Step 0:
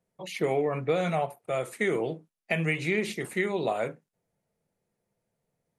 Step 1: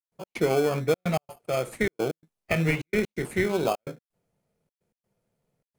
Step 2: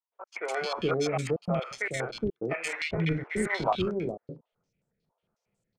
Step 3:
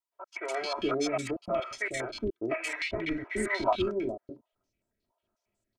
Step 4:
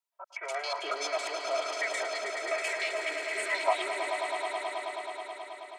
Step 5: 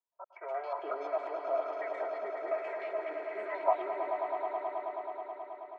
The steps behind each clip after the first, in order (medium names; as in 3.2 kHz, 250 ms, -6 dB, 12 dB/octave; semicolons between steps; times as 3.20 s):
trance gate ".x.xxxxx" 128 bpm -60 dB; in parallel at -4 dB: sample-rate reducer 1.9 kHz, jitter 0%
three bands offset in time mids, highs, lows 130/420 ms, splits 520/1900 Hz; step-sequenced low-pass 11 Hz 980–7800 Hz; trim -2.5 dB
comb 3.1 ms, depth 87%; trim -3 dB
high-pass 560 Hz 24 dB/octave; on a send: echo with a slow build-up 107 ms, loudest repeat 5, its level -9 dB
Chebyshev low-pass 900 Hz, order 2